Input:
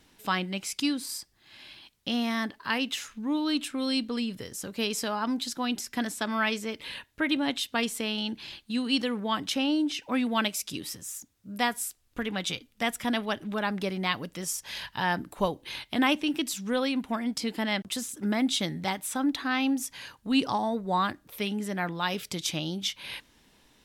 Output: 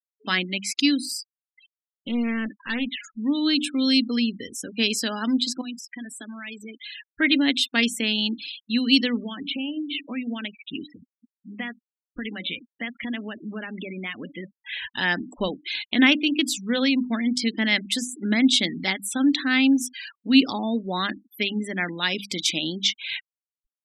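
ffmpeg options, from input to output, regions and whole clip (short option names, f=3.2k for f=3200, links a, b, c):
-filter_complex "[0:a]asettb=1/sr,asplit=3[a][b][c];[a]atrim=end=1.664[d];[b]atrim=start=1.66:end=3.04,asetpts=PTS-STARTPTS,afade=t=in:d=0.004:c=qsin,afade=t=out:st=1.376:d=0.004:c=qsin,lowpass=2.4k,aeval=exprs='clip(val(0),-1,0.0126)':c=same[e];[c]atrim=start=3.036[f];[d][e]acrossfade=d=0.004:c1=hsin:c2=qsin[g];[g][f]acrossfade=d=0.004:c1=qsin:c2=hsin,asettb=1/sr,asplit=3[h][i][j];[h]atrim=end=5.614[k];[i]atrim=start=5.61:end=7.1,asetpts=PTS-STARTPTS,afade=t=in:d=0.004:c=qsin,afade=t=out:st=1.486:d=0.004:c=qsin,acompressor=threshold=-41dB:ratio=4:attack=3.2:release=140:knee=1:detection=peak,highshelf=f=11k:g=10.5[l];[j]atrim=start=7.096[m];[k][l]acrossfade=d=0.004:c1=hsin:c2=qsin[n];[n][m]acrossfade=d=0.004:c1=qsin:c2=hsin,asettb=1/sr,asplit=3[o][p][q];[o]atrim=end=9.234[r];[p]atrim=start=9.23:end=14.88,asetpts=PTS-STARTPTS,afade=t=in:d=0.004:c=qsin,afade=t=out:st=5.646:d=0.004:c=qsin,lowpass=f=3.3k:w=0.5412,lowpass=f=3.3k:w=1.3066,bandreject=f=277.7:t=h:w=4,bandreject=f=555.4:t=h:w=4,acompressor=threshold=-32dB:ratio=12:attack=3.2:release=140:knee=1:detection=peak[s];[q]atrim=start=14.876[t];[r][s]acrossfade=d=0.004:c1=hsin:c2=qsin[u];[u][t]acrossfade=d=0.004:c1=qsin:c2=hsin,bandreject=f=50:t=h:w=6,bandreject=f=100:t=h:w=6,bandreject=f=150:t=h:w=6,bandreject=f=200:t=h:w=6,bandreject=f=250:t=h:w=6,bandreject=f=300:t=h:w=6,afftfilt=real='re*gte(hypot(re,im),0.0141)':imag='im*gte(hypot(re,im),0.0141)':win_size=1024:overlap=0.75,equalizer=f=125:t=o:w=1:g=-10,equalizer=f=250:t=o:w=1:g=11,equalizer=f=1k:t=o:w=1:g=-7,equalizer=f=2k:t=o:w=1:g=10,equalizer=f=4k:t=o:w=1:g=7,equalizer=f=8k:t=o:w=1:g=4"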